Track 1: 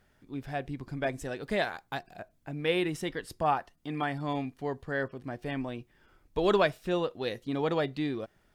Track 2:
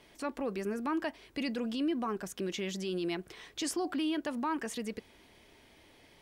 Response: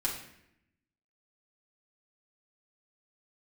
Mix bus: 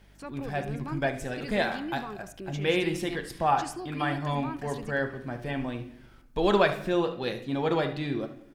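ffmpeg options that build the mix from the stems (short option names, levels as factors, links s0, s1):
-filter_complex "[0:a]volume=0.891,asplit=3[s0][s1][s2];[s1]volume=0.473[s3];[s2]volume=0.282[s4];[1:a]aeval=exprs='val(0)+0.00282*(sin(2*PI*50*n/s)+sin(2*PI*2*50*n/s)/2+sin(2*PI*3*50*n/s)/3+sin(2*PI*4*50*n/s)/4+sin(2*PI*5*50*n/s)/5)':c=same,volume=0.562,asplit=2[s5][s6];[s6]volume=0.0944[s7];[2:a]atrim=start_sample=2205[s8];[s3][s8]afir=irnorm=-1:irlink=0[s9];[s4][s7]amix=inputs=2:normalize=0,aecho=0:1:74:1[s10];[s0][s5][s9][s10]amix=inputs=4:normalize=0"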